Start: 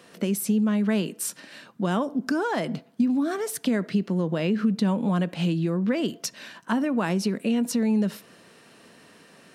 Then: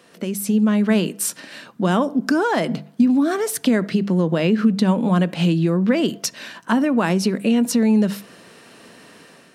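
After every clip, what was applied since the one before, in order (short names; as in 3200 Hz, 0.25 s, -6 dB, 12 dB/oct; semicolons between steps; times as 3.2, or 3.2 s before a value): notches 50/100/150/200 Hz; AGC gain up to 7 dB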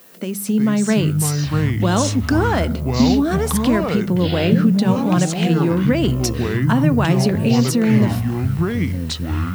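echoes that change speed 0.275 s, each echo -6 st, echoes 3; added noise violet -48 dBFS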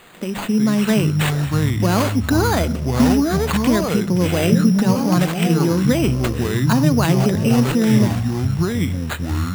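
careless resampling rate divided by 8×, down none, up hold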